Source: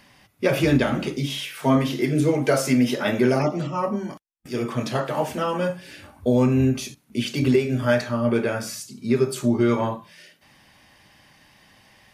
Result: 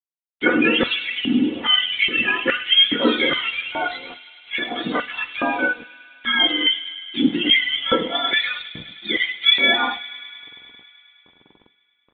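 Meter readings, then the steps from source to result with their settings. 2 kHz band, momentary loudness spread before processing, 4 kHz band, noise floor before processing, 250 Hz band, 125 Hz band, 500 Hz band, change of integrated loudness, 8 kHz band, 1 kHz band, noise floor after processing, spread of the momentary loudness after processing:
+11.5 dB, 10 LU, +17.5 dB, -58 dBFS, -2.5 dB, -16.5 dB, -5.0 dB, +4.0 dB, under -40 dB, +2.0 dB, -66 dBFS, 15 LU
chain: spectrum inverted on a logarithmic axis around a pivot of 900 Hz; comb 4.1 ms, depth 45%; LFO high-pass square 1.2 Hz 300–2400 Hz; crossover distortion -44.5 dBFS; on a send: feedback echo behind a high-pass 104 ms, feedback 81%, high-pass 2.8 kHz, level -12.5 dB; on the sum: two-slope reverb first 0.24 s, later 1.6 s, from -18 dB, DRR 15.5 dB; resampled via 8 kHz; trim +4 dB

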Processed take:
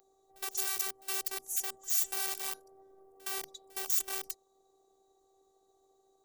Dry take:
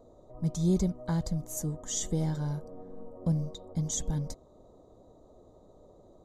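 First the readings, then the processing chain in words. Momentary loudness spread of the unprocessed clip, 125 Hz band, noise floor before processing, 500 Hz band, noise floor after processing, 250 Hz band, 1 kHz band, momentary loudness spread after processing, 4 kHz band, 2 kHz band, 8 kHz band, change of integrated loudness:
13 LU, under -40 dB, -58 dBFS, -10.5 dB, -71 dBFS, under -25 dB, +1.5 dB, 13 LU, +3.5 dB, no reading, +1.0 dB, -1.0 dB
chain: integer overflow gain 27.5 dB; robot voice 386 Hz; RIAA curve recording; on a send: reverse echo 65 ms -23 dB; on the sum: trim -7 dB

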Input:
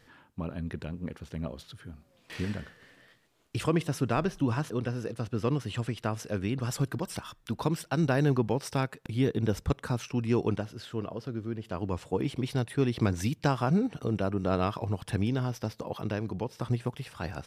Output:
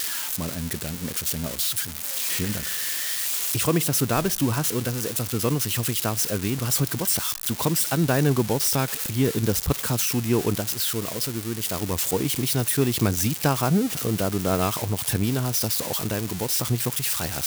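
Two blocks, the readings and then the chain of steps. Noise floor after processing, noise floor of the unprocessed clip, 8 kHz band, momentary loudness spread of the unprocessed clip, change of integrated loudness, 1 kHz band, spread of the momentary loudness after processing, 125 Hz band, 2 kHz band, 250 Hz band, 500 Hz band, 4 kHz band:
-33 dBFS, -64 dBFS, +21.5 dB, 11 LU, +8.0 dB, +5.0 dB, 5 LU, +4.5 dB, +7.5 dB, +4.5 dB, +4.5 dB, +15.0 dB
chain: zero-crossing glitches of -21.5 dBFS; trim +4.5 dB

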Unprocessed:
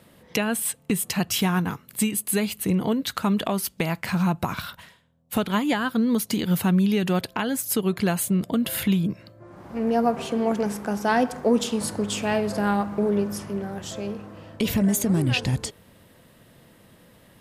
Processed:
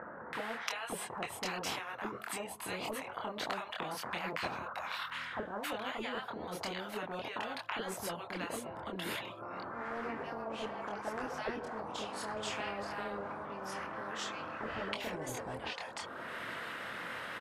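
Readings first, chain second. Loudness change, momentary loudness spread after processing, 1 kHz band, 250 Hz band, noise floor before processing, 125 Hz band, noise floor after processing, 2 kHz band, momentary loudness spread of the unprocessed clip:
-15.5 dB, 4 LU, -9.0 dB, -22.5 dB, -55 dBFS, -24.0 dB, -47 dBFS, -7.5 dB, 9 LU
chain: upward compressor, threshold -26 dBFS; chorus voices 6, 0.9 Hz, delay 25 ms, depth 2.2 ms; auto-wah 300–1700 Hz, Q 7.3, down, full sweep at -18 dBFS; bands offset in time lows, highs 330 ms, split 1 kHz; spectrum-flattening compressor 4:1; trim +6 dB

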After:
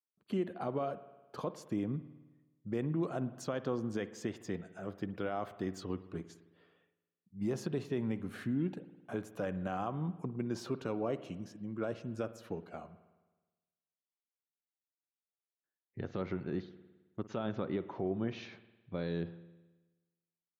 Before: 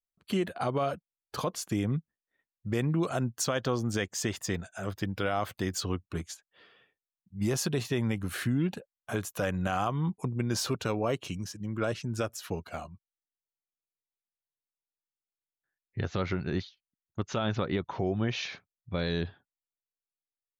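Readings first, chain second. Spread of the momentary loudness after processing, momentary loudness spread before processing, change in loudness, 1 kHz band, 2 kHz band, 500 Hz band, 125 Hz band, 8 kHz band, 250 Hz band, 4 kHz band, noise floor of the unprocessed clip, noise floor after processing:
12 LU, 10 LU, -6.5 dB, -8.0 dB, -11.0 dB, -5.0 dB, -8.5 dB, -18.0 dB, -4.5 dB, -15.0 dB, under -85 dBFS, under -85 dBFS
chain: high-pass 240 Hz 12 dB/octave; tilt EQ -3.5 dB/octave; spring tank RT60 1.2 s, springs 53 ms, chirp 70 ms, DRR 13.5 dB; trim -8.5 dB

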